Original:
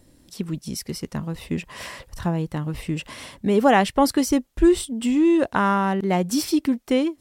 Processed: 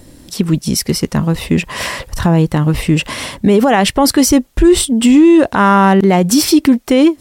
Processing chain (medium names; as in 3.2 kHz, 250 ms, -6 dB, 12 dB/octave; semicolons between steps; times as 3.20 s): loudness maximiser +16 dB; trim -1 dB